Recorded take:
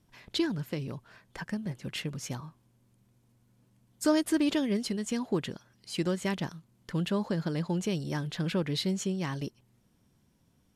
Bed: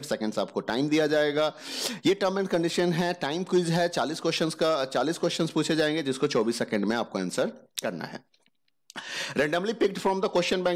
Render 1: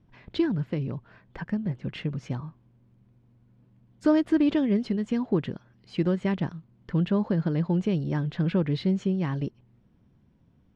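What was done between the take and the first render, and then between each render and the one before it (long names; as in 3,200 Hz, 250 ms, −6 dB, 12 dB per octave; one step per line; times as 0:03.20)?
low-pass filter 2,800 Hz 12 dB per octave
low-shelf EQ 410 Hz +7.5 dB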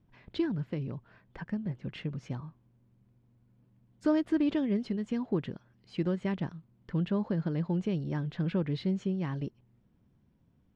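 level −5.5 dB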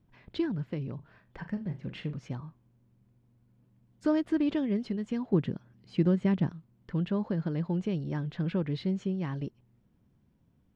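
0:00.95–0:02.18: flutter between parallel walls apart 6.8 metres, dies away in 0.23 s
0:05.33–0:06.52: parametric band 170 Hz +6.5 dB 2.5 octaves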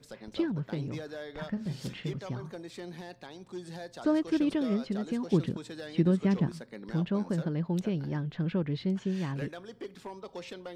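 mix in bed −17.5 dB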